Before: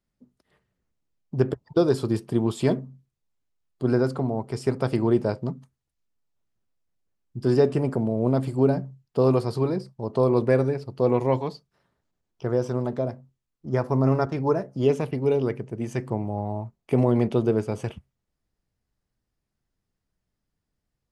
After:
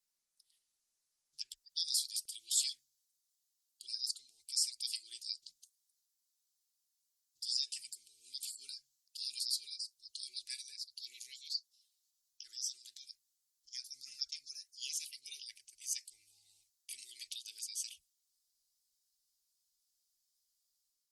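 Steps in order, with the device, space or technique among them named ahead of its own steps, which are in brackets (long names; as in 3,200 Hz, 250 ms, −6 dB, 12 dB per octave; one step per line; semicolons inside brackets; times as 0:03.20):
inverse Chebyshev band-stop filter 110–1,100 Hz, stop band 70 dB
noise-suppressed video call (high-pass filter 150 Hz 12 dB per octave; gate on every frequency bin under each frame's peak −25 dB strong; automatic gain control gain up to 5.5 dB; level +6 dB; Opus 32 kbit/s 48,000 Hz)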